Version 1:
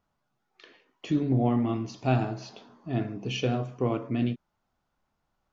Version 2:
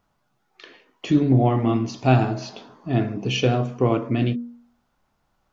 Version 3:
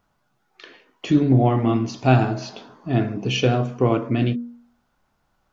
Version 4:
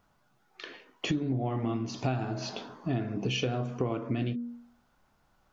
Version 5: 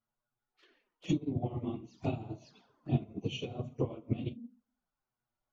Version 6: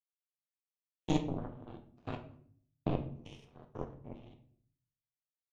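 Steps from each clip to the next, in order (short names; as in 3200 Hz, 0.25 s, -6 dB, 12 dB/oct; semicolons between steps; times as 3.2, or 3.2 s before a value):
de-hum 79.55 Hz, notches 8; gain +8 dB
bell 1500 Hz +3 dB 0.22 oct; gain +1 dB
compressor 10:1, threshold -27 dBFS, peak gain reduction 17 dB
phase scrambler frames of 50 ms; envelope flanger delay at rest 8.9 ms, full sweep at -31 dBFS; upward expander 2.5:1, over -39 dBFS; gain +2 dB
stepped spectrum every 0.1 s; power-law curve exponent 3; shoebox room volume 71 m³, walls mixed, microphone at 0.4 m; gain +8.5 dB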